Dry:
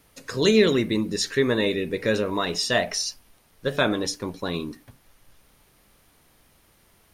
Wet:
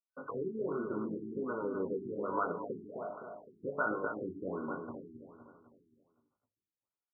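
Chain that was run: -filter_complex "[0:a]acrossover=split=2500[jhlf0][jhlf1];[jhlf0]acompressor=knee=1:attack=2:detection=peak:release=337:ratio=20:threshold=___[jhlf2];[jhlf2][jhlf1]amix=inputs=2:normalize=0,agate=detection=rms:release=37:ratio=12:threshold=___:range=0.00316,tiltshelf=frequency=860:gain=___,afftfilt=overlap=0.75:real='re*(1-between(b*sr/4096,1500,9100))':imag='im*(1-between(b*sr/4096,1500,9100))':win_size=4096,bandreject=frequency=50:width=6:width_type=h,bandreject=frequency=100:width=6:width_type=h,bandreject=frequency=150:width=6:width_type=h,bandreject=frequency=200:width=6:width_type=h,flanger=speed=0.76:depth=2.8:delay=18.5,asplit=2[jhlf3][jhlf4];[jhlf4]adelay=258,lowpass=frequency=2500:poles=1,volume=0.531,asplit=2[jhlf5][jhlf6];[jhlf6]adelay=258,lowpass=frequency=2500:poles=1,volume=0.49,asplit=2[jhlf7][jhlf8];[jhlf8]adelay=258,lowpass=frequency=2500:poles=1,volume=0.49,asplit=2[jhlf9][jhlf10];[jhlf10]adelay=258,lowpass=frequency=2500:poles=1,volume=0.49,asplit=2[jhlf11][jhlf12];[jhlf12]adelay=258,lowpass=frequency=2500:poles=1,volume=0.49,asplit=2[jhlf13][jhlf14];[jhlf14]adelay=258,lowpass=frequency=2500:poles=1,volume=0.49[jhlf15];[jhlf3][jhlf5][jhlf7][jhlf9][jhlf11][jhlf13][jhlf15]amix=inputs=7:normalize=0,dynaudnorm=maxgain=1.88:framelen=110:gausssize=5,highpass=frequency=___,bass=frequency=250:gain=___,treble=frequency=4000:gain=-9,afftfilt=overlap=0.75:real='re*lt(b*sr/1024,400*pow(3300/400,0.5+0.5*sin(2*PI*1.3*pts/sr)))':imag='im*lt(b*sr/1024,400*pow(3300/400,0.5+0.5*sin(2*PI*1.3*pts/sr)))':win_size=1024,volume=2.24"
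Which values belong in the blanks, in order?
0.0178, 0.00251, -8, 150, 0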